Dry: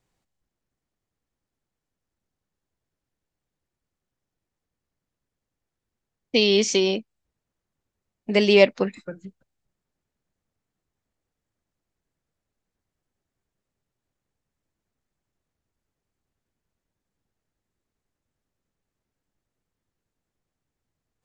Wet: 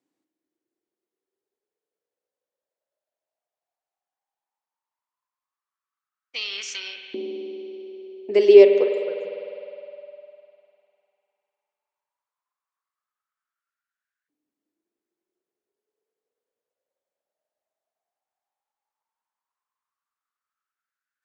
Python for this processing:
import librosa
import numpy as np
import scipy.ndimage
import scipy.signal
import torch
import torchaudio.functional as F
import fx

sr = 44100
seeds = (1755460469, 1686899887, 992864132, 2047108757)

y = fx.rev_spring(x, sr, rt60_s=3.1, pass_ms=(50,), chirp_ms=25, drr_db=5.0)
y = fx.filter_lfo_highpass(y, sr, shape='saw_up', hz=0.14, low_hz=280.0, high_hz=1600.0, q=7.9)
y = F.gain(torch.from_numpy(y), -9.0).numpy()